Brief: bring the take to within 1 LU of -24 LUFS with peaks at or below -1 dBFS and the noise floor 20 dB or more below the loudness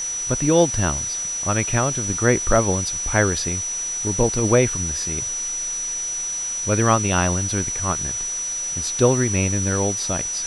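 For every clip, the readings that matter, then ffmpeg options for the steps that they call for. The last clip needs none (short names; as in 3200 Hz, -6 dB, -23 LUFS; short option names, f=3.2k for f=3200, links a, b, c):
steady tone 5900 Hz; tone level -24 dBFS; noise floor -27 dBFS; noise floor target -41 dBFS; loudness -20.5 LUFS; peak -3.0 dBFS; loudness target -24.0 LUFS
-> -af "bandreject=f=5.9k:w=30"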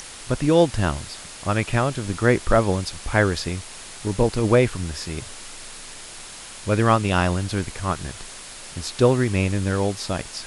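steady tone none; noise floor -39 dBFS; noise floor target -43 dBFS
-> -af "afftdn=nr=6:nf=-39"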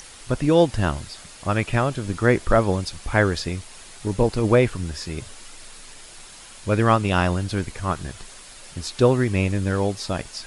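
noise floor -44 dBFS; loudness -22.5 LUFS; peak -4.0 dBFS; loudness target -24.0 LUFS
-> -af "volume=-1.5dB"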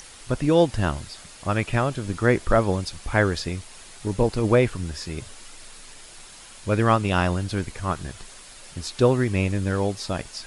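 loudness -24.0 LUFS; peak -5.5 dBFS; noise floor -45 dBFS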